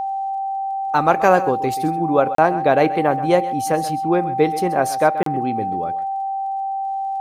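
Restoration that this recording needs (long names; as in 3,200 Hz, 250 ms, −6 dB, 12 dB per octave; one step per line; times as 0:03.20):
click removal
notch filter 780 Hz, Q 30
repair the gap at 0:02.35/0:05.23, 33 ms
echo removal 131 ms −15 dB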